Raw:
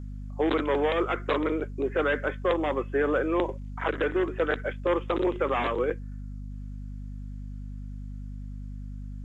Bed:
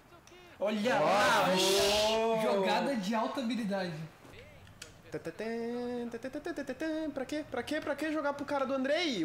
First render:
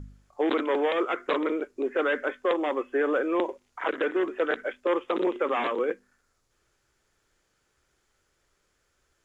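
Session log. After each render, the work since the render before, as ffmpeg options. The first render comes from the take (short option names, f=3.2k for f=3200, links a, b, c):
-af "bandreject=f=50:t=h:w=4,bandreject=f=100:t=h:w=4,bandreject=f=150:t=h:w=4,bandreject=f=200:t=h:w=4,bandreject=f=250:t=h:w=4"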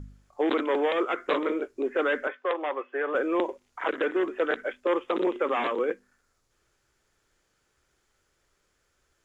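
-filter_complex "[0:a]asettb=1/sr,asplit=3[a][b][c];[a]atrim=end=1.164[d];[b]atrim=start=1.16:end=1.77,asetpts=PTS-STARTPTS,afade=t=in:d=0.004:c=qsin,afade=t=out:st=0.606:d=0.004:c=qsin,asplit=2[e][f];[f]adelay=18,volume=-9dB[g];[e][g]amix=inputs=2:normalize=0,atrim=end_sample=26901[h];[c]atrim=start=1.766[i];[d][h]acrossfade=d=0.004:c1=hsin:c2=qsin[j];[j][i]acrossfade=d=0.004:c1=qsin:c2=hsin,asettb=1/sr,asplit=3[k][l][m];[k]atrim=end=2.274[n];[l]atrim=start=2.27:end=3.15,asetpts=PTS-STARTPTS,afade=t=in:d=0.004:c=qsin,afade=t=out:st=0.876:d=0.004:c=qsin,highpass=520,lowpass=3.1k[o];[m]atrim=start=3.146[p];[n][o]acrossfade=d=0.004:c1=hsin:c2=qsin[q];[q][p]acrossfade=d=0.004:c1=qsin:c2=hsin"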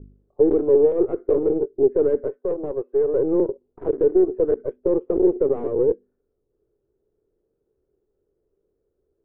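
-af "aeval=exprs='0.251*(cos(1*acos(clip(val(0)/0.251,-1,1)))-cos(1*PI/2))+0.00891*(cos(7*acos(clip(val(0)/0.251,-1,1)))-cos(7*PI/2))+0.0282*(cos(8*acos(clip(val(0)/0.251,-1,1)))-cos(8*PI/2))':c=same,lowpass=f=420:t=q:w=4.9"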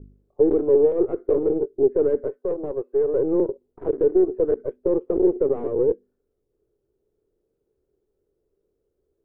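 -af "volume=-1dB"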